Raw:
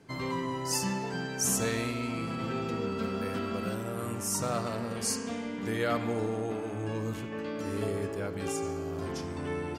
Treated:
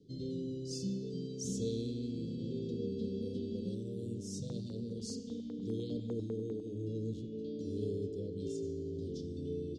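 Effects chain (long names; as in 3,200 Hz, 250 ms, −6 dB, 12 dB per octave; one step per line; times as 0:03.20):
Chebyshev band-stop filter 470–3,500 Hz, order 4
high-frequency loss of the air 140 metres
0:04.40–0:06.67: notch on a step sequencer 10 Hz 350–2,200 Hz
level −3.5 dB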